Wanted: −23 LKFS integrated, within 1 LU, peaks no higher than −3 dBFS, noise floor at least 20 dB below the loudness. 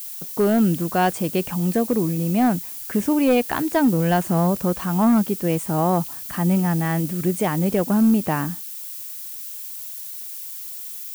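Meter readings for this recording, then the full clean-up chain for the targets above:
share of clipped samples 0.6%; peaks flattened at −11.5 dBFS; background noise floor −34 dBFS; target noise floor −42 dBFS; integrated loudness −21.5 LKFS; sample peak −11.5 dBFS; target loudness −23.0 LKFS
→ clipped peaks rebuilt −11.5 dBFS
noise reduction from a noise print 8 dB
level −1.5 dB

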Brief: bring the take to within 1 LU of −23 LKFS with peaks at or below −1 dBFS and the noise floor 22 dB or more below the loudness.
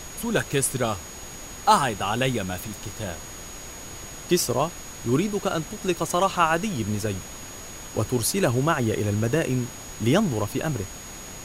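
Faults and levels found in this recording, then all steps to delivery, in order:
interfering tone 6,700 Hz; level of the tone −41 dBFS; background noise floor −40 dBFS; target noise floor −47 dBFS; integrated loudness −25.0 LKFS; sample peak −4.5 dBFS; target loudness −23.0 LKFS
→ notch filter 6,700 Hz, Q 30
noise reduction from a noise print 7 dB
level +2 dB

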